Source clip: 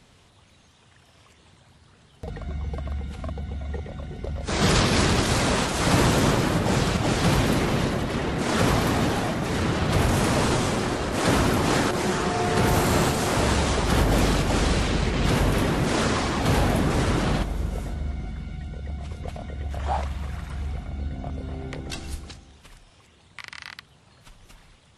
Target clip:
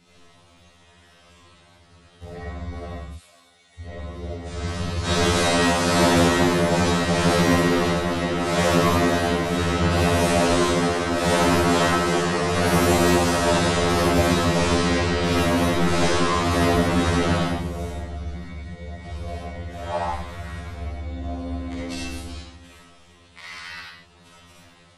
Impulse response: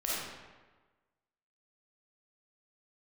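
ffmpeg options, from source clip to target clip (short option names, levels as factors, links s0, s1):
-filter_complex "[0:a]asettb=1/sr,asplit=3[s0][s1][s2];[s0]atrim=end=2.934[s3];[s1]atrim=start=2.93:end=3.8,asetpts=PTS-STARTPTS,afade=t=in:d=0.004:c=qsin,afade=t=out:st=0.866:d=0.004:c=qsin,aderivative[s4];[s2]atrim=start=3.796[s5];[s3][s4]acrossfade=d=0.004:c1=hsin:c2=qsin[s6];[s6][s5]acrossfade=d=0.004:c1=qsin:c2=hsin,asettb=1/sr,asplit=3[s7][s8][s9];[s7]atrim=end=4.334[s10];[s8]atrim=start=4.33:end=5.05,asetpts=PTS-STARTPTS,afade=t=in:d=0.004:c=qsin,afade=t=out:st=0.716:d=0.004:c=qsin,acrossover=split=130[s11][s12];[s12]acompressor=threshold=0.00794:ratio=2.5[s13];[s11][s13]amix=inputs=2:normalize=0[s14];[s9]atrim=start=5.046[s15];[s10][s14]acrossfade=d=0.004:c1=hsin:c2=qsin[s16];[s16][s15]acrossfade=d=0.004:c1=qsin:c2=hsin,asettb=1/sr,asplit=3[s17][s18][s19];[s17]atrim=end=15.614[s20];[s18]atrim=start=15.61:end=16.17,asetpts=PTS-STARTPTS,afade=t=in:d=0.004:c=qsin,afade=t=out:st=0.556:d=0.004:c=qsin,aeval=exprs='0.282*(cos(1*acos(clip(val(0)/0.282,-1,1)))-cos(1*PI/2))+0.00398*(cos(8*acos(clip(val(0)/0.282,-1,1)))-cos(8*PI/2))':c=same[s21];[s19]atrim=start=16.166[s22];[s20][s21]acrossfade=d=0.004:c1=hsin:c2=qsin[s23];[s23][s22]acrossfade=d=0.004:c1=qsin:c2=hsin[s24];[1:a]atrim=start_sample=2205,afade=t=out:st=0.3:d=0.01,atrim=end_sample=13671[s25];[s24][s25]afir=irnorm=-1:irlink=0,afftfilt=real='re*2*eq(mod(b,4),0)':imag='im*2*eq(mod(b,4),0)':win_size=2048:overlap=0.75"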